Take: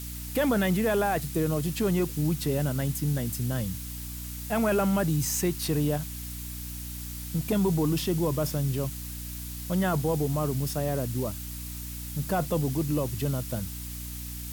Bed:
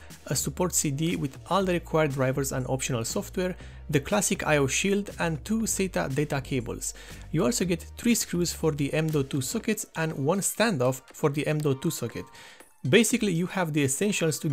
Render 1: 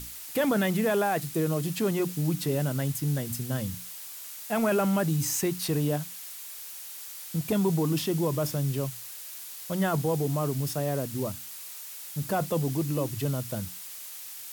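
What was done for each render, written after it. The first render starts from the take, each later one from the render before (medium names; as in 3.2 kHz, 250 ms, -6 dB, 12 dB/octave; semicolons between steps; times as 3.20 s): hum notches 60/120/180/240/300 Hz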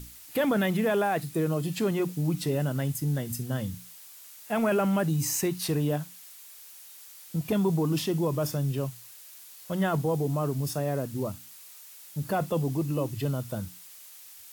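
noise print and reduce 7 dB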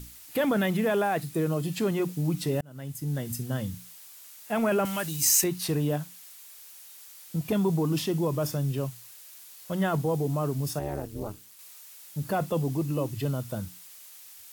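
2.61–3.27 s: fade in; 4.85–5.44 s: tilt shelf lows -9 dB, about 1.3 kHz; 10.79–11.59 s: AM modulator 210 Hz, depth 90%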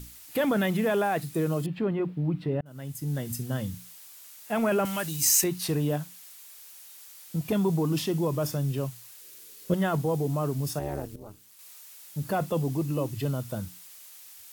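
1.66–2.66 s: distance through air 460 m; 9.21–9.74 s: resonant low shelf 560 Hz +8 dB, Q 3; 11.16–11.70 s: fade in, from -14.5 dB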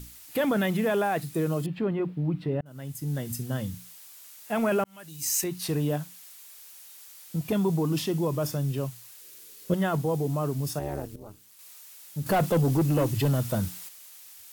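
4.84–5.79 s: fade in linear; 12.26–13.89 s: waveshaping leveller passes 2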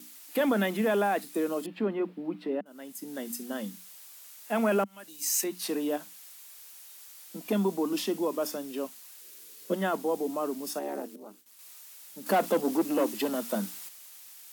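Chebyshev high-pass 200 Hz, order 6; gate with hold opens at -44 dBFS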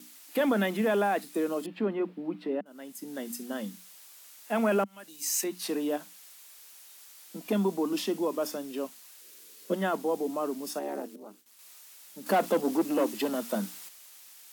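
treble shelf 9.8 kHz -4 dB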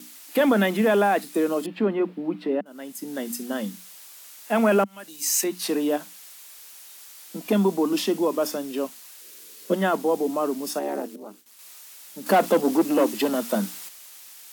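trim +6.5 dB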